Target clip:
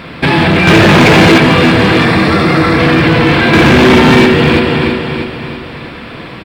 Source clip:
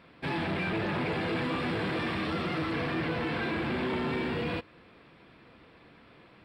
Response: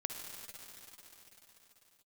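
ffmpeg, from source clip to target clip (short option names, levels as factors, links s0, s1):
-filter_complex "[1:a]atrim=start_sample=2205,afade=t=out:st=0.18:d=0.01,atrim=end_sample=8379[s0];[0:a][s0]afir=irnorm=-1:irlink=0,asettb=1/sr,asplit=3[s1][s2][s3];[s1]atrim=end=3.534[s4];[s2]atrim=start=3.53:end=4.26,asetpts=PTS-STARTPTS,afade=t=in:d=0.004:c=qsin,afade=t=out:st=0.726:d=0.004:c=qsin,acontrast=28[s5];[s3]atrim=start=4.256[s6];[s4][s5]acrossfade=d=0.004:c1=hsin:c2=qsin[s7];[s7][s6]acrossfade=d=0.004:c1=qsin:c2=hsin,equalizer=f=680:w=0.45:g=-3,asettb=1/sr,asplit=3[s8][s9][s10];[s8]atrim=end=0.674[s11];[s9]atrim=start=0.67:end=1.38,asetpts=PTS-STARTPTS,afade=t=in:d=0.004:c=qsin,afade=t=out:st=0.706:d=0.004:c=qsin,acontrast=70[s12];[s10]atrim=start=1.376[s13];[s11][s12]acrossfade=d=0.004:c1=hsin:c2=qsin[s14];[s14][s13]acrossfade=d=0.004:c1=qsin:c2=hsin,asettb=1/sr,asplit=3[s15][s16][s17];[s15]atrim=end=2.054[s18];[s16]atrim=start=2.05:end=2.79,asetpts=PTS-STARTPTS,afade=t=in:d=0.004:c=qsin,afade=t=out:st=0.736:d=0.004:c=qsin,equalizer=f=3000:w=5:g=-14.5[s19];[s17]atrim=start=2.786[s20];[s18][s19]acrossfade=d=0.004:c1=hsin:c2=qsin[s21];[s21][s20]acrossfade=d=0.004:c1=qsin:c2=hsin,aecho=1:1:323|646|969|1292|1615:0.316|0.145|0.0669|0.0308|0.0142,asoftclip=type=hard:threshold=0.0447,alimiter=level_in=39.8:limit=0.891:release=50:level=0:latency=1,volume=0.891"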